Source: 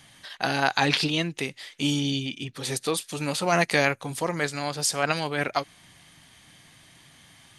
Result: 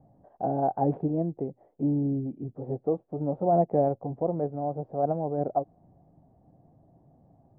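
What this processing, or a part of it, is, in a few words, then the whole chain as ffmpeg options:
under water: -af "lowpass=frequency=580:width=0.5412,lowpass=frequency=580:width=1.3066,equalizer=frequency=740:width_type=o:width=0.6:gain=11"

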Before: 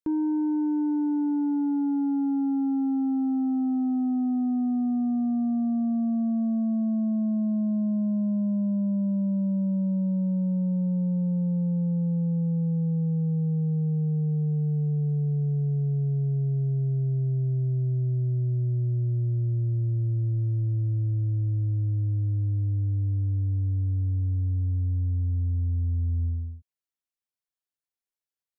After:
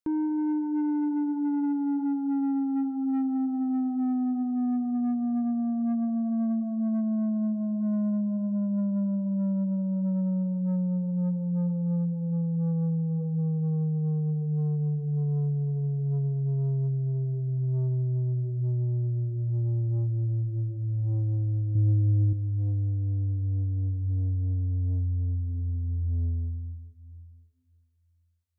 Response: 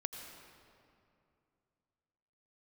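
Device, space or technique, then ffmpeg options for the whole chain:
saturated reverb return: -filter_complex "[0:a]asplit=2[link_01][link_02];[1:a]atrim=start_sample=2205[link_03];[link_02][link_03]afir=irnorm=-1:irlink=0,asoftclip=type=tanh:threshold=-25dB,volume=0.5dB[link_04];[link_01][link_04]amix=inputs=2:normalize=0,asettb=1/sr,asplit=3[link_05][link_06][link_07];[link_05]atrim=end=21.754[link_08];[link_06]atrim=start=21.75:end=22.33,asetpts=PTS-STARTPTS,afade=type=in:duration=0.004:curve=qsin,afade=type=out:start_time=0.576:duration=0.004:curve=qsin,equalizer=frequency=210:width=0.42:gain=7.5[link_09];[link_07]atrim=start=22.326[link_10];[link_08][link_09]acrossfade=duration=0.004:curve1=hsin:curve2=qsin[link_11];[link_11][link_10]acrossfade=duration=0.004:curve1=qsin:curve2=hsin,volume=-6dB"

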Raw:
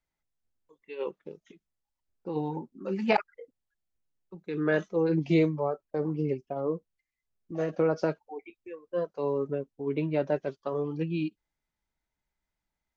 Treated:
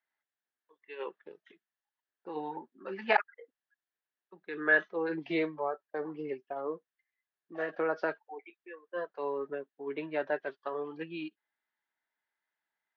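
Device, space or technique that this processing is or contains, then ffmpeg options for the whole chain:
phone earpiece: -af "highpass=490,equalizer=frequency=530:width_type=q:width=4:gain=-5,equalizer=frequency=1700:width_type=q:width=4:gain=10,equalizer=frequency=2400:width_type=q:width=4:gain=-3,lowpass=frequency=3800:width=0.5412,lowpass=frequency=3800:width=1.3066"

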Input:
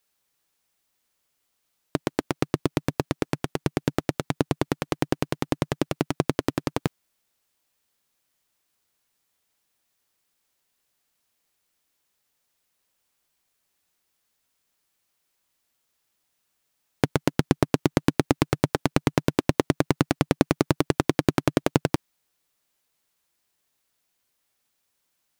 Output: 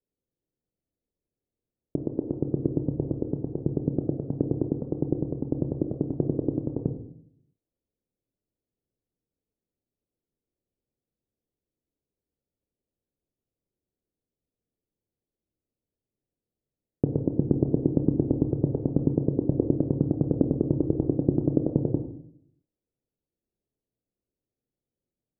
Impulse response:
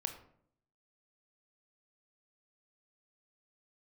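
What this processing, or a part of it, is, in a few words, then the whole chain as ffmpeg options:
next room: -filter_complex "[0:a]lowpass=frequency=480:width=0.5412,lowpass=frequency=480:width=1.3066[link_01];[1:a]atrim=start_sample=2205[link_02];[link_01][link_02]afir=irnorm=-1:irlink=0"

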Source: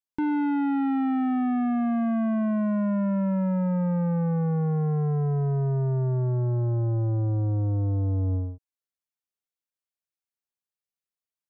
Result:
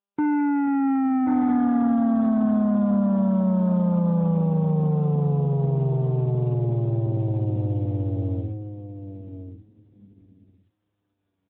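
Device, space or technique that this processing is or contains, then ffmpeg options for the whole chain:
mobile call with aggressive noise cancelling: -filter_complex "[0:a]anlmdn=15.8,highpass=frequency=140:poles=1,asplit=2[link_01][link_02];[link_02]adelay=1078,lowpass=frequency=2400:poles=1,volume=-6dB,asplit=2[link_03][link_04];[link_04]adelay=1078,lowpass=frequency=2400:poles=1,volume=0.15,asplit=2[link_05][link_06];[link_06]adelay=1078,lowpass=frequency=2400:poles=1,volume=0.15[link_07];[link_01][link_03][link_05][link_07]amix=inputs=4:normalize=0,afftdn=noise_reduction=13:noise_floor=-43,volume=4.5dB" -ar 8000 -c:a libopencore_amrnb -b:a 10200

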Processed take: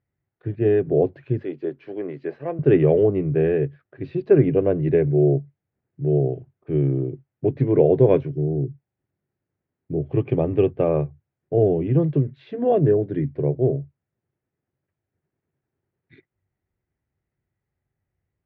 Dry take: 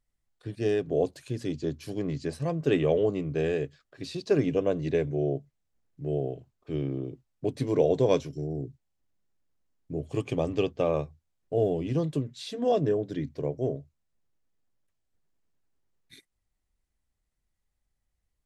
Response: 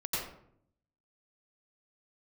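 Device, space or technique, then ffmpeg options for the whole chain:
bass cabinet: -filter_complex "[0:a]asettb=1/sr,asplit=3[link_01][link_02][link_03];[link_01]atrim=end=1.394[link_04];[link_02]atrim=start=1.39:end=2.59,asetpts=PTS-STARTPTS,afade=type=in:duration=0.004:curve=qsin,afade=type=out:start_time=1.196:duration=0.004:curve=qsin,highpass=420[link_05];[link_03]atrim=start=2.586[link_06];[link_04][link_05]acrossfade=duration=0.004:curve1=hsin:curve2=qsin[link_07];[link_07][link_06]acrossfade=duration=0.004:curve1=qsin:curve2=hsin,highpass=85,equalizer=frequency=97:width_type=q:width=4:gain=9,equalizer=frequency=140:width_type=q:width=4:gain=8,equalizer=frequency=370:width_type=q:width=4:gain=7,equalizer=frequency=1100:width_type=q:width=4:gain=-5,lowpass=frequency=2200:width=0.5412,lowpass=frequency=2200:width=1.3066,volume=4.5dB"

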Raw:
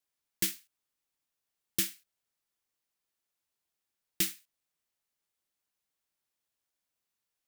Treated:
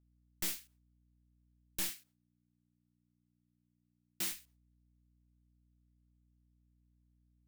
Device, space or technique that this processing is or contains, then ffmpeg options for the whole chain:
valve amplifier with mains hum: -filter_complex "[0:a]agate=range=-33dB:threshold=-58dB:ratio=3:detection=peak,aeval=exprs='(tanh(112*val(0)+0.6)-tanh(0.6))/112':channel_layout=same,aeval=exprs='val(0)+0.000126*(sin(2*PI*60*n/s)+sin(2*PI*2*60*n/s)/2+sin(2*PI*3*60*n/s)/3+sin(2*PI*4*60*n/s)/4+sin(2*PI*5*60*n/s)/5)':channel_layout=same,asettb=1/sr,asplit=3[link_01][link_02][link_03];[link_01]atrim=end=1.894[link_04];[link_02]atrim=start=1.89:end=4.32,asetpts=PTS-STARTPTS,afade=type=in:duration=0.004:curve=qsin,afade=type=out:start_time=2.426:duration=0.004:curve=qsin,highpass=140[link_05];[link_03]atrim=start=4.316[link_06];[link_04][link_05]acrossfade=duration=0.004:curve1=hsin:curve2=qsin[link_07];[link_07][link_06]acrossfade=duration=0.004:curve1=qsin:curve2=hsin,volume=7.5dB"

